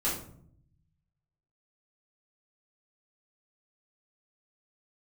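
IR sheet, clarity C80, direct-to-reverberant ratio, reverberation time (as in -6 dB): 9.5 dB, -8.5 dB, 0.60 s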